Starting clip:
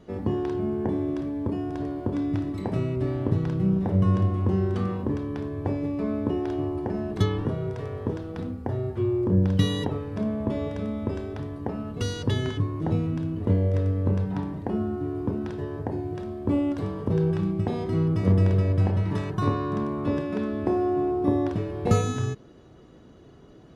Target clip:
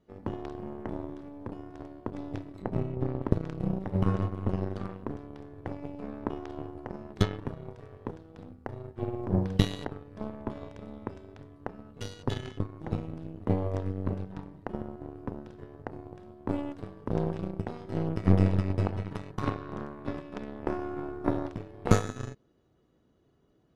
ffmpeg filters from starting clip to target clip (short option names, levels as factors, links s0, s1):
-filter_complex "[0:a]aeval=exprs='0.501*(cos(1*acos(clip(val(0)/0.501,-1,1)))-cos(1*PI/2))+0.224*(cos(2*acos(clip(val(0)/0.501,-1,1)))-cos(2*PI/2))+0.0251*(cos(3*acos(clip(val(0)/0.501,-1,1)))-cos(3*PI/2))+0.0501*(cos(7*acos(clip(val(0)/0.501,-1,1)))-cos(7*PI/2))':c=same,asettb=1/sr,asplit=3[s0][s1][s2];[s0]atrim=end=2.624[s3];[s1]atrim=start=2.62:end=3.22,asetpts=PTS-STARTPTS,afade=t=in:d=0.004:c=qsin,afade=t=out:st=0.596:d=0.004:c=qsin,tiltshelf=f=1400:g=6.5[s4];[s2]atrim=start=3.216[s5];[s3][s4]acrossfade=d=0.004:c1=hsin:c2=qsin[s6];[s6][s5]acrossfade=d=0.004:c1=qsin:c2=hsin,volume=0.891"